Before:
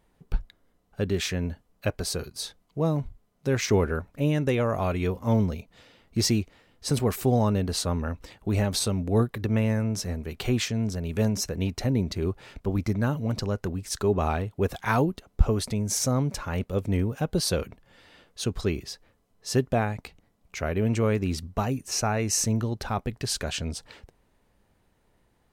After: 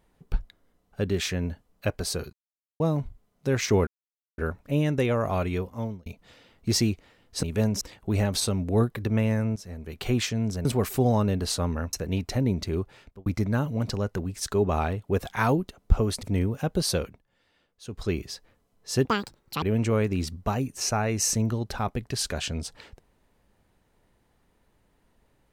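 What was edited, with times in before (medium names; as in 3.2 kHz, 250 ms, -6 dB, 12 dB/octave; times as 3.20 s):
2.33–2.80 s: mute
3.87 s: insert silence 0.51 s
4.93–5.55 s: fade out
6.92–8.20 s: swap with 11.04–11.42 s
9.95–10.49 s: fade in, from -16 dB
12.22–12.75 s: fade out
15.72–16.81 s: delete
17.53–18.72 s: dip -14 dB, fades 0.29 s
19.63–20.73 s: speed 192%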